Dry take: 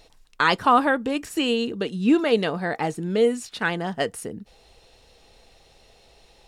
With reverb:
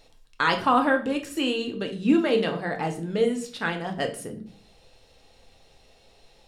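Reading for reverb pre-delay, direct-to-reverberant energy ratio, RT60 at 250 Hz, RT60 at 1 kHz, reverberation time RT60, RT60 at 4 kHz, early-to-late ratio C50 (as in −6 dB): 4 ms, 4.0 dB, 0.70 s, 0.45 s, 0.50 s, 0.40 s, 11.5 dB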